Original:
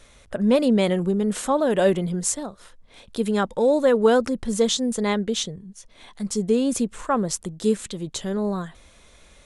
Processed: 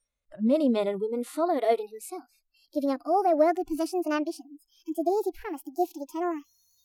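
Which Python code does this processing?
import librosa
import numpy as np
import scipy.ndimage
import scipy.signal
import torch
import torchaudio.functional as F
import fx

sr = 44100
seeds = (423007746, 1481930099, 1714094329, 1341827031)

y = fx.speed_glide(x, sr, from_pct=100, to_pct=176)
y = fx.noise_reduce_blind(y, sr, reduce_db=28)
y = fx.hpss(y, sr, part='percussive', gain_db=-16)
y = y * 10.0 ** (-3.5 / 20.0)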